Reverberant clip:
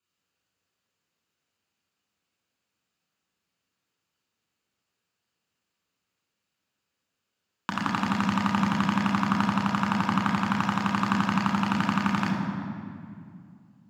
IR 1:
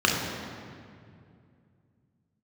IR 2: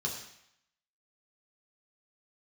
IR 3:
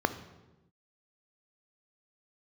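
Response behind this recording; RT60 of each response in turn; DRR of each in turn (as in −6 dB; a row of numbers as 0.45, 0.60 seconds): 1; 2.4, 0.75, 1.1 seconds; −2.0, −2.5, 10.5 decibels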